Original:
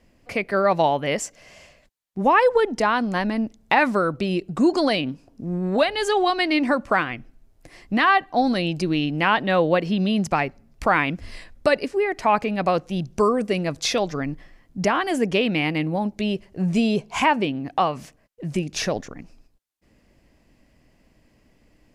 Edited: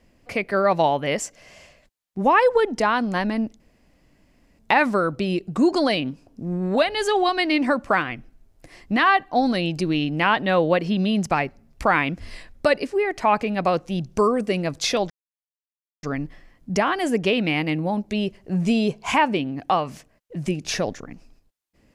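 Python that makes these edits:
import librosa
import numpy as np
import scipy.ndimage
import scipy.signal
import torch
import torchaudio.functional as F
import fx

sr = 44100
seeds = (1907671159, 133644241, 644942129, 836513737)

y = fx.edit(x, sr, fx.insert_room_tone(at_s=3.6, length_s=0.99),
    fx.insert_silence(at_s=14.11, length_s=0.93), tone=tone)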